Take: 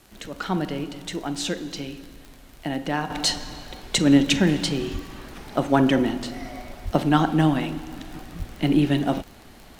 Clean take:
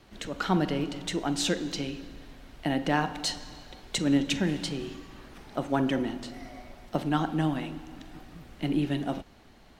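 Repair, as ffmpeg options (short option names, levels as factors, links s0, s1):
-filter_complex "[0:a]adeclick=t=4,asplit=3[s0][s1][s2];[s0]afade=t=out:st=4.92:d=0.02[s3];[s1]highpass=f=140:w=0.5412,highpass=f=140:w=1.3066,afade=t=in:st=4.92:d=0.02,afade=t=out:st=5.04:d=0.02[s4];[s2]afade=t=in:st=5.04:d=0.02[s5];[s3][s4][s5]amix=inputs=3:normalize=0,asplit=3[s6][s7][s8];[s6]afade=t=out:st=6.84:d=0.02[s9];[s7]highpass=f=140:w=0.5412,highpass=f=140:w=1.3066,afade=t=in:st=6.84:d=0.02,afade=t=out:st=6.96:d=0.02[s10];[s8]afade=t=in:st=6.96:d=0.02[s11];[s9][s10][s11]amix=inputs=3:normalize=0,asplit=3[s12][s13][s14];[s12]afade=t=out:st=8.38:d=0.02[s15];[s13]highpass=f=140:w=0.5412,highpass=f=140:w=1.3066,afade=t=in:st=8.38:d=0.02,afade=t=out:st=8.5:d=0.02[s16];[s14]afade=t=in:st=8.5:d=0.02[s17];[s15][s16][s17]amix=inputs=3:normalize=0,agate=range=0.0891:threshold=0.0141,asetnsamples=n=441:p=0,asendcmd='3.1 volume volume -8dB',volume=1"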